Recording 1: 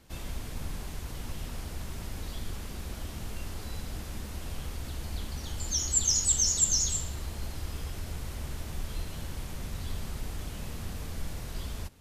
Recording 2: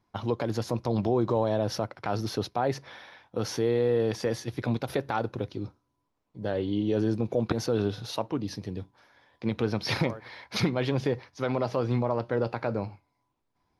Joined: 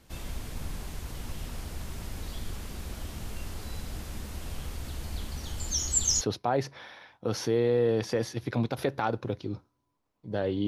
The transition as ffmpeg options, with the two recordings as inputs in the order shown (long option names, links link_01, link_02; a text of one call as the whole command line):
ffmpeg -i cue0.wav -i cue1.wav -filter_complex "[0:a]apad=whole_dur=10.67,atrim=end=10.67,atrim=end=6.212[link_01];[1:a]atrim=start=2.318:end=6.78[link_02];[link_01][link_02]acrossfade=duration=0.004:curve1=hsin:curve2=hsin" out.wav